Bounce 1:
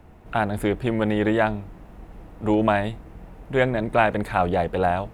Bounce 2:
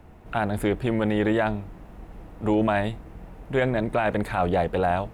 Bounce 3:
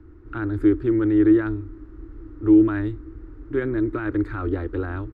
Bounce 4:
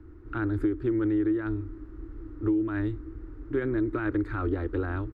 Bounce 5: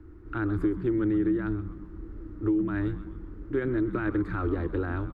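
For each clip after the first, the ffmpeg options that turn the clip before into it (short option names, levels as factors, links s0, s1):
-af "alimiter=limit=0.211:level=0:latency=1:release=13"
-af "firequalizer=gain_entry='entry(110,0);entry(170,-26);entry(310,10);entry(470,-11);entry(680,-24);entry(1300,-3);entry(2600,-19);entry(4700,-14);entry(9700,-29)':delay=0.05:min_phase=1,volume=1.41"
-af "acompressor=threshold=0.0891:ratio=12,volume=0.841"
-filter_complex "[0:a]asplit=6[s0][s1][s2][s3][s4][s5];[s1]adelay=128,afreqshift=-130,volume=0.224[s6];[s2]adelay=256,afreqshift=-260,volume=0.11[s7];[s3]adelay=384,afreqshift=-390,volume=0.0537[s8];[s4]adelay=512,afreqshift=-520,volume=0.0263[s9];[s5]adelay=640,afreqshift=-650,volume=0.0129[s10];[s0][s6][s7][s8][s9][s10]amix=inputs=6:normalize=0"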